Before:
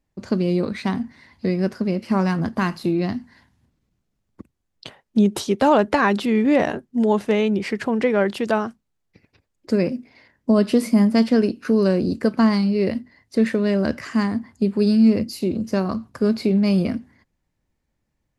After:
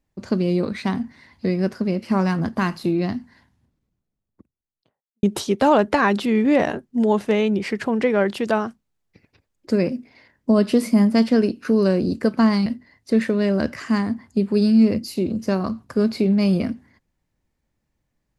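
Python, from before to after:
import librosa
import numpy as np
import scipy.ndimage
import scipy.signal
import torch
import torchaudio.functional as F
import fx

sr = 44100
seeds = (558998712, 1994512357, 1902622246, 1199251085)

y = fx.studio_fade_out(x, sr, start_s=2.94, length_s=2.29)
y = fx.edit(y, sr, fx.cut(start_s=12.66, length_s=0.25), tone=tone)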